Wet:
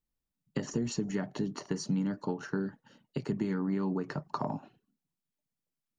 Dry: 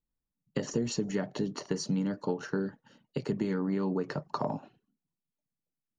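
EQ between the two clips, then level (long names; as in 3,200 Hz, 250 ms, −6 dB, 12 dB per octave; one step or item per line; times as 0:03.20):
dynamic equaliser 510 Hz, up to −7 dB, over −48 dBFS, Q 2.4
dynamic equaliser 4,000 Hz, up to −4 dB, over −54 dBFS, Q 0.83
0.0 dB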